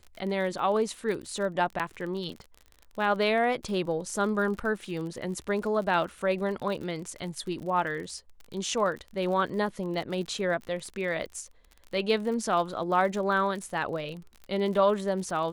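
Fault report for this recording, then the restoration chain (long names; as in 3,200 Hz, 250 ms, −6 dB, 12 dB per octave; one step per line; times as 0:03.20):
surface crackle 40 per second −36 dBFS
0:01.79–0:01.80: drop-out 7.4 ms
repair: click removal
repair the gap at 0:01.79, 7.4 ms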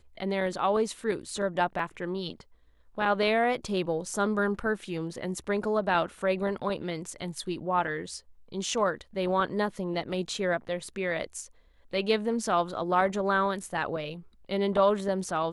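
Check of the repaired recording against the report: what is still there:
none of them is left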